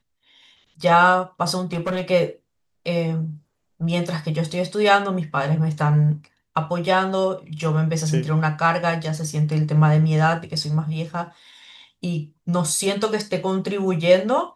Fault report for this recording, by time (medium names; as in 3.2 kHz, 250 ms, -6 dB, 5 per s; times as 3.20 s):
1.64–2.10 s: clipped -19.5 dBFS